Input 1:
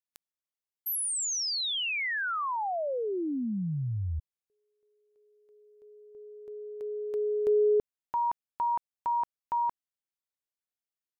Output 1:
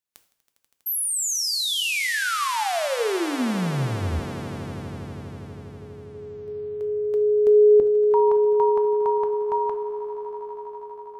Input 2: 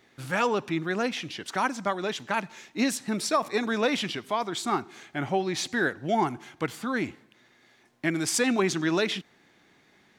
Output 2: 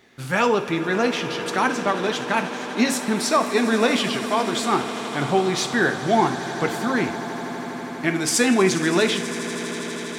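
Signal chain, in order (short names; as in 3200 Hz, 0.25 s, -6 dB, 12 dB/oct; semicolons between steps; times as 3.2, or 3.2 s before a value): on a send: swelling echo 81 ms, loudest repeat 8, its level -18 dB; on the sum: two-slope reverb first 0.49 s, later 2 s, DRR 7.5 dB; gain +5 dB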